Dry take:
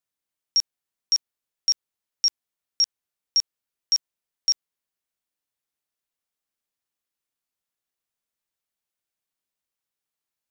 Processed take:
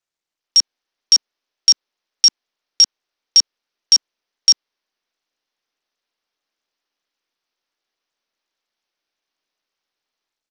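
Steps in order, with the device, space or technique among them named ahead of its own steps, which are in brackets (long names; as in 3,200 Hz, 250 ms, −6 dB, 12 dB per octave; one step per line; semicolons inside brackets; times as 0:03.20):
Bluetooth headset (high-pass filter 250 Hz 24 dB per octave; automatic gain control gain up to 6 dB; downsampling to 16,000 Hz; level +3.5 dB; SBC 64 kbit/s 48,000 Hz)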